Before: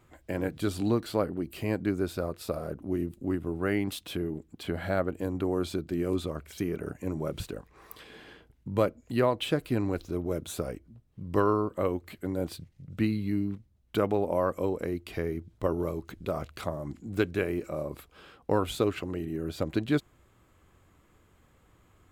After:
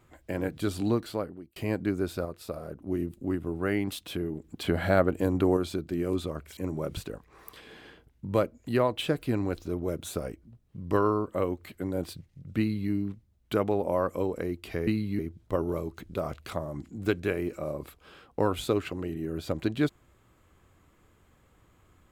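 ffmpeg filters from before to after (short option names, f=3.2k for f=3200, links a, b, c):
-filter_complex "[0:a]asplit=9[a][b][c][d][e][f][g][h][i];[a]atrim=end=1.56,asetpts=PTS-STARTPTS,afade=t=out:st=0.95:d=0.61[j];[b]atrim=start=1.56:end=2.252,asetpts=PTS-STARTPTS,afade=t=in:d=0.004:c=hsin[k];[c]atrim=start=2.248:end=2.872,asetpts=PTS-STARTPTS,volume=-4dB[l];[d]atrim=start=2.868:end=4.442[m];[e]atrim=start=4.438:end=5.572,asetpts=PTS-STARTPTS,volume=5.5dB[n];[f]atrim=start=5.568:end=6.572[o];[g]atrim=start=6.998:end=15.302[p];[h]atrim=start=13.018:end=13.342[q];[i]atrim=start=15.298[r];[j][k]concat=n=2:v=0:a=1[s];[s][l]acrossfade=d=0.004:c1=hsin:c2=hsin[t];[t][m]acrossfade=d=0.004:c1=hsin:c2=hsin[u];[u][n]acrossfade=d=0.004:c1=hsin:c2=hsin[v];[v][o]acrossfade=d=0.004:c1=hsin:c2=hsin[w];[w][p]acrossfade=d=0.004:c1=hsin:c2=hsin[x];[x][q]acrossfade=d=0.004:c1=hsin:c2=hsin[y];[y][r]acrossfade=d=0.004:c1=hsin:c2=hsin"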